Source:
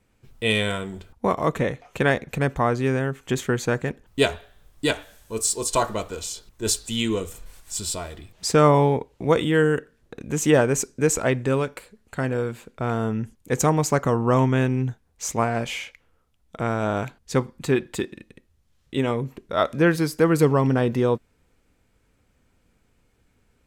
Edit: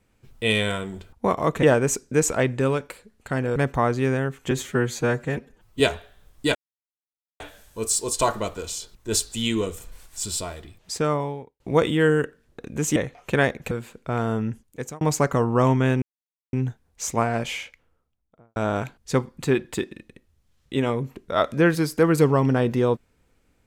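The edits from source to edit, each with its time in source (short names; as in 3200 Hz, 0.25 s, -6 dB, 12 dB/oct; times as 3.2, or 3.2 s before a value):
1.63–2.38 swap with 10.5–12.43
3.33–4.19 stretch 1.5×
4.94 insert silence 0.85 s
7.94–9.14 fade out
13.2–13.73 fade out
14.74 insert silence 0.51 s
15.75–16.77 studio fade out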